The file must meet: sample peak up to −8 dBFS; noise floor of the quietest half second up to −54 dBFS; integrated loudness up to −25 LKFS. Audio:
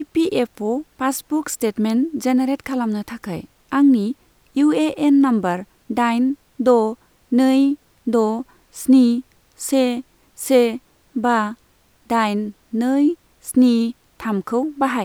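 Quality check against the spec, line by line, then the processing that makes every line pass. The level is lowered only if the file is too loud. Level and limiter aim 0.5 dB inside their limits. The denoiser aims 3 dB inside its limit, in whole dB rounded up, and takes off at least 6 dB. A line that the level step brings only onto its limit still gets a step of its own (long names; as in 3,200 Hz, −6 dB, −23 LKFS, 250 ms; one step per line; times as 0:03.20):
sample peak −3.0 dBFS: out of spec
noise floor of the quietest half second −57 dBFS: in spec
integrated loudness −19.5 LKFS: out of spec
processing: level −6 dB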